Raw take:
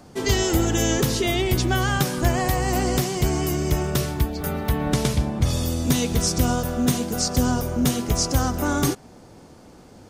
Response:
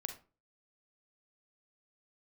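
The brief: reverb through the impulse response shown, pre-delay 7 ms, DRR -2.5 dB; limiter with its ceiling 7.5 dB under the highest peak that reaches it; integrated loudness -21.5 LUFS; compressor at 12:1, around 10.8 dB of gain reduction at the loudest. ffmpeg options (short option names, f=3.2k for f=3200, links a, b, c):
-filter_complex "[0:a]acompressor=threshold=-26dB:ratio=12,alimiter=limit=-23dB:level=0:latency=1,asplit=2[a][b];[1:a]atrim=start_sample=2205,adelay=7[c];[b][c]afir=irnorm=-1:irlink=0,volume=4dB[d];[a][d]amix=inputs=2:normalize=0,volume=7.5dB"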